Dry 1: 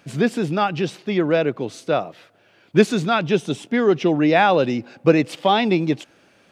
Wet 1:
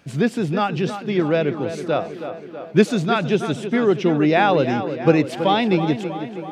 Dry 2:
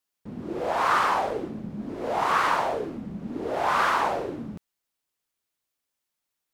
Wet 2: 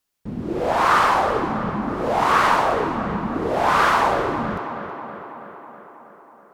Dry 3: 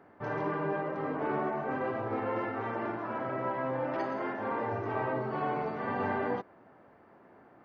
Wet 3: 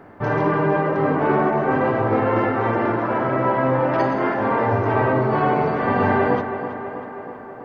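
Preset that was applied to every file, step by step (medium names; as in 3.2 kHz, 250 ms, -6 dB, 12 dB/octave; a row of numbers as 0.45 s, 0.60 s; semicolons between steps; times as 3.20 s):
bass shelf 110 Hz +9.5 dB; on a send: tape echo 323 ms, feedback 70%, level -9 dB, low-pass 3.2 kHz; on the sum: normalise loudness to -20 LUFS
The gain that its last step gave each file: -1.5 dB, +5.5 dB, +12.5 dB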